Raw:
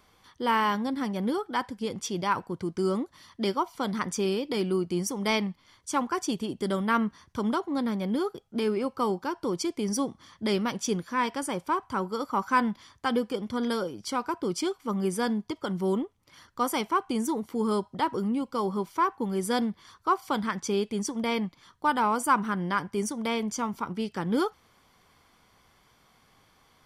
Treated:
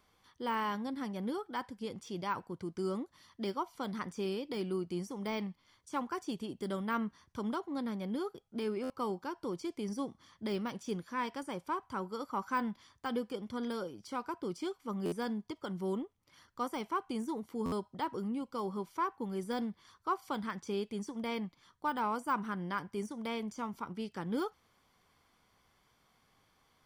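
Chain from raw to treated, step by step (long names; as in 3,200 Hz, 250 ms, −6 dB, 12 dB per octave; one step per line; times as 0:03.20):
de-essing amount 90%
buffer that repeats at 0:08.83/0:15.05/0:17.65, samples 512, times 5
level −8.5 dB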